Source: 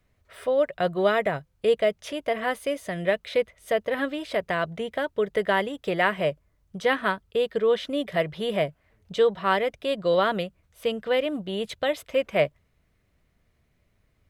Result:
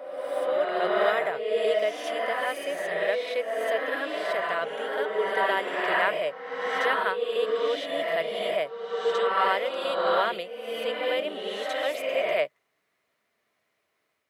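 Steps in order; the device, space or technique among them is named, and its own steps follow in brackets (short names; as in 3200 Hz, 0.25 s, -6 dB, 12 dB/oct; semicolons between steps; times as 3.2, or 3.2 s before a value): ghost voice (reverse; reverb RT60 1.7 s, pre-delay 44 ms, DRR -2.5 dB; reverse; HPF 500 Hz 12 dB/oct); gain -3 dB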